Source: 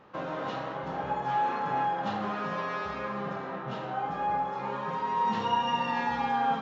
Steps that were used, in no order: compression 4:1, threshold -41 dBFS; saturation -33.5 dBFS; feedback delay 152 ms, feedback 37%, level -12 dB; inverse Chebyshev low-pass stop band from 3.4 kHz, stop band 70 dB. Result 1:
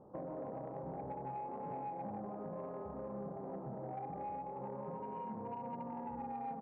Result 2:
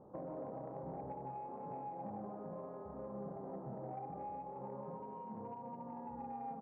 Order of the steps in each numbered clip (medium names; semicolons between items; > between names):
inverse Chebyshev low-pass > compression > feedback delay > saturation; compression > inverse Chebyshev low-pass > saturation > feedback delay